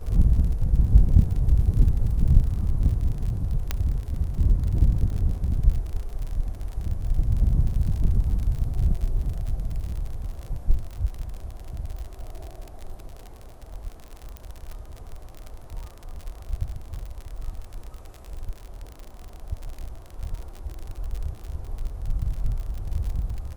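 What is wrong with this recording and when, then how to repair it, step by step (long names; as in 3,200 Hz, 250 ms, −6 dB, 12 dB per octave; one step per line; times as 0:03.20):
surface crackle 55 per second −31 dBFS
0:03.71: click −10 dBFS
0:14.37: click −22 dBFS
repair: click removal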